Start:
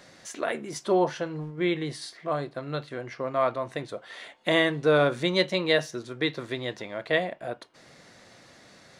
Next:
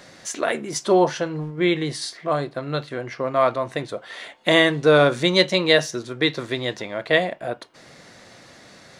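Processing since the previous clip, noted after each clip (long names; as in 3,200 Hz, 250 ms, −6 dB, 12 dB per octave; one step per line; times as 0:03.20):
dynamic equaliser 6,500 Hz, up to +5 dB, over −46 dBFS, Q 0.85
level +6 dB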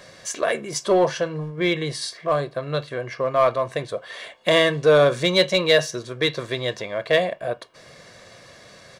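comb filter 1.8 ms, depth 49%
in parallel at −6 dB: hard clipping −15.5 dBFS, distortion −8 dB
on the sum: level −4 dB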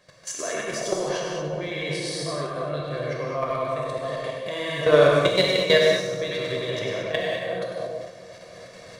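echo with a time of its own for lows and highs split 960 Hz, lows 332 ms, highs 97 ms, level −5 dB
output level in coarse steps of 15 dB
reverb whose tail is shaped and stops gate 250 ms flat, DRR −2 dB
level −2 dB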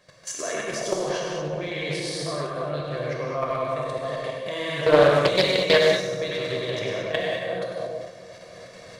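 highs frequency-modulated by the lows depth 0.25 ms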